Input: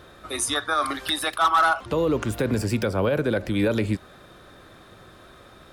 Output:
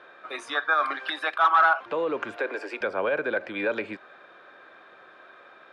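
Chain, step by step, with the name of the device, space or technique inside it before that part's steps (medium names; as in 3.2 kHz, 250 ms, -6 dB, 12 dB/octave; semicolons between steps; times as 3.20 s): tin-can telephone (band-pass 520–2400 Hz; small resonant body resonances 1.6/2.4 kHz, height 8 dB, ringing for 25 ms); 2.36–2.81 s: steep high-pass 290 Hz 48 dB/octave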